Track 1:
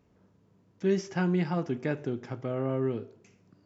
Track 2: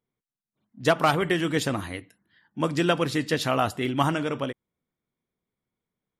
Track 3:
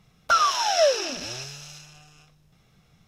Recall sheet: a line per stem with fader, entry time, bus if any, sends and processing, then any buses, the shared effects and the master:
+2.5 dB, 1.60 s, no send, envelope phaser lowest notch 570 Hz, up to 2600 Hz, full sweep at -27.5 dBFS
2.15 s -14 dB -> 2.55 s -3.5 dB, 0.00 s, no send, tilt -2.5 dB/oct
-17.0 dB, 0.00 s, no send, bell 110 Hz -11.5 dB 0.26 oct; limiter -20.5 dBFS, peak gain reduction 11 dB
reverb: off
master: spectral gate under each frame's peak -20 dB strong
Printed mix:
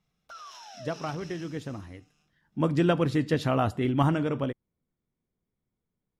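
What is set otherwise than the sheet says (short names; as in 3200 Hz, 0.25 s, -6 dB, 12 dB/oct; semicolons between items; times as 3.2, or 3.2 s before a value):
stem 1: muted; master: missing spectral gate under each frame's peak -20 dB strong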